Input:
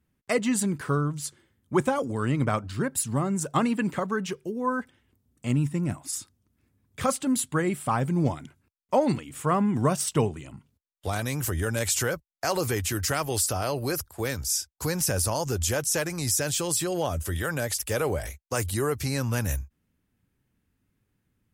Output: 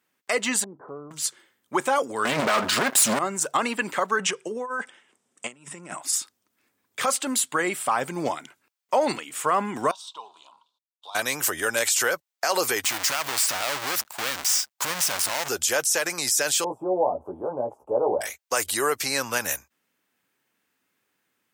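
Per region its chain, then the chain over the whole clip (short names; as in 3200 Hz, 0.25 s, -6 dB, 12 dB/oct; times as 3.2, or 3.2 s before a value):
0.64–1.11 inverse Chebyshev low-pass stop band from 2800 Hz, stop band 60 dB + compressor 2:1, threshold -40 dBFS
2.25–3.19 comb 4.8 ms, depth 41% + sample leveller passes 5
4.19–6.02 negative-ratio compressor -31 dBFS, ratio -0.5 + speaker cabinet 150–9600 Hz, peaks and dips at 180 Hz +4 dB, 270 Hz -5 dB, 4300 Hz -7 dB, 8000 Hz +5 dB
9.91–11.15 G.711 law mismatch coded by mu + double band-pass 1900 Hz, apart 1.9 oct + compressor 1.5:1, threshold -55 dBFS
12.84–15.49 half-waves squared off + bell 420 Hz -9.5 dB 0.99 oct + compressor 4:1, threshold -28 dBFS
16.64–18.21 G.711 law mismatch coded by mu + elliptic low-pass 920 Hz, stop band 50 dB + doubler 16 ms -4 dB
whole clip: Bessel high-pass 700 Hz, order 2; bell 11000 Hz -6.5 dB 0.23 oct; limiter -21 dBFS; gain +9 dB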